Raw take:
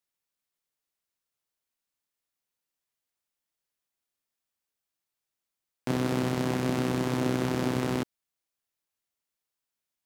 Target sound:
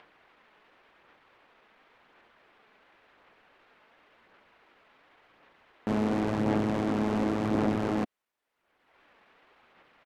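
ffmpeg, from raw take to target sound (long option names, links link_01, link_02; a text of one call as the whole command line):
ffmpeg -i in.wav -filter_complex "[0:a]bass=frequency=250:gain=-11,treble=frequency=4000:gain=-14,acrossover=split=4300[link_01][link_02];[link_01]acompressor=mode=upward:threshold=-48dB:ratio=2.5[link_03];[link_02]alimiter=level_in=23dB:limit=-24dB:level=0:latency=1,volume=-23dB[link_04];[link_03][link_04]amix=inputs=2:normalize=0,aeval=exprs='(tanh(31.6*val(0)+0.05)-tanh(0.05))/31.6':channel_layout=same,aphaser=in_gain=1:out_gain=1:delay=4:decay=0.26:speed=0.92:type=sinusoidal,asetrate=37084,aresample=44100,atempo=1.18921,volume=8dB" out.wav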